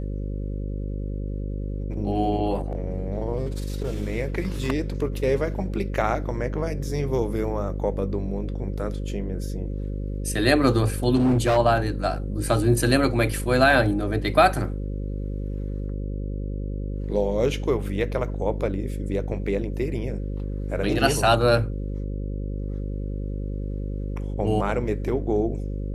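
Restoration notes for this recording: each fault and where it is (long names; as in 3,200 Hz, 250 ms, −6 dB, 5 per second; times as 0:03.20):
mains buzz 50 Hz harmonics 11 −29 dBFS
0:11.15–0:11.58: clipping −16 dBFS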